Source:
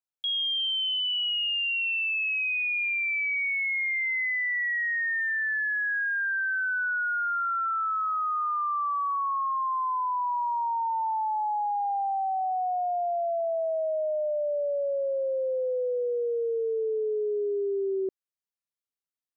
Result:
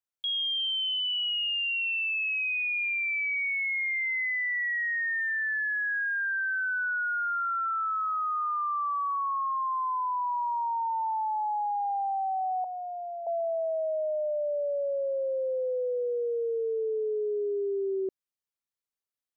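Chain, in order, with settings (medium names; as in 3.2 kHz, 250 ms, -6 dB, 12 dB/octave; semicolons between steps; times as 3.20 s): 12.64–13.27 s: high-pass 1 kHz 12 dB/octave; trim -1.5 dB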